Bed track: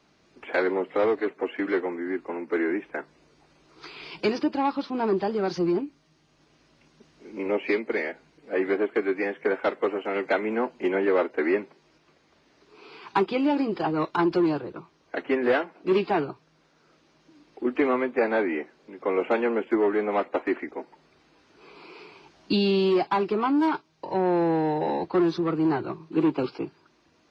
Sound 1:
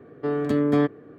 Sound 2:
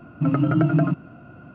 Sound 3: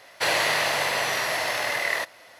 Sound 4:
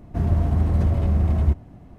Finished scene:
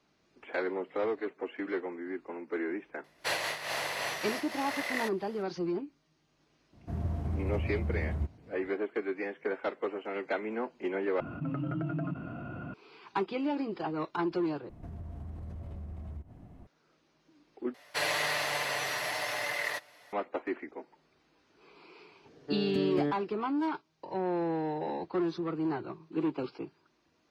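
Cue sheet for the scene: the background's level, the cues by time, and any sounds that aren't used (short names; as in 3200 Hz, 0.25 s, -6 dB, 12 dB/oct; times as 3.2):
bed track -8.5 dB
3.04 add 3 -7 dB + noise-modulated level
6.73 add 4 -12 dB + HPF 65 Hz
11.2 replace with 2 -16.5 dB + fast leveller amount 70%
14.69 replace with 4 -7 dB + compressor 5:1, threshold -34 dBFS
17.74 replace with 3 -9 dB + comb 6.8 ms, depth 58%
22.25 add 1 -10.5 dB + bell 1100 Hz -11.5 dB 0.36 oct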